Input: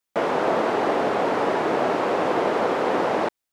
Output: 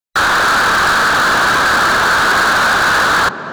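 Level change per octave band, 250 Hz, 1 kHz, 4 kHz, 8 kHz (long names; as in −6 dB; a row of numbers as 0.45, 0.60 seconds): +1.0 dB, +11.0 dB, +20.0 dB, can't be measured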